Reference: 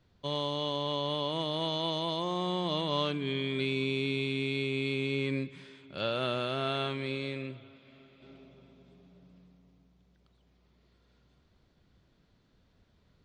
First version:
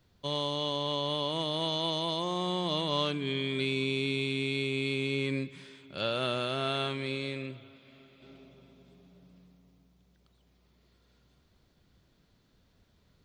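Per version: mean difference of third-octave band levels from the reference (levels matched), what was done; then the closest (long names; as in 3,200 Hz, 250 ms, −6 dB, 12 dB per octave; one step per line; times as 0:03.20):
1.5 dB: high-shelf EQ 6,200 Hz +10 dB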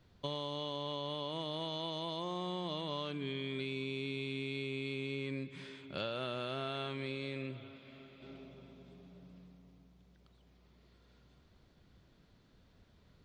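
3.5 dB: downward compressor 6 to 1, threshold −38 dBFS, peak gain reduction 12 dB
level +2 dB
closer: first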